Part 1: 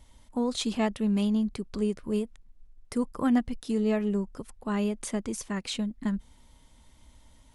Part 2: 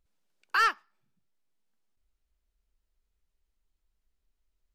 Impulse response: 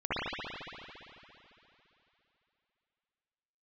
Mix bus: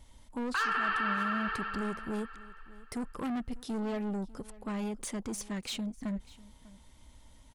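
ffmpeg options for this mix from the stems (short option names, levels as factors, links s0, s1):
-filter_complex "[0:a]asoftclip=type=tanh:threshold=0.0282,volume=0.944,asplit=2[s0][s1];[s1]volume=0.0944[s2];[1:a]afwtdn=0.01,volume=0.841,asplit=2[s3][s4];[s4]volume=0.631[s5];[2:a]atrim=start_sample=2205[s6];[s5][s6]afir=irnorm=-1:irlink=0[s7];[s2]aecho=0:1:597:1[s8];[s0][s3][s7][s8]amix=inputs=4:normalize=0,alimiter=limit=0.0794:level=0:latency=1:release=98"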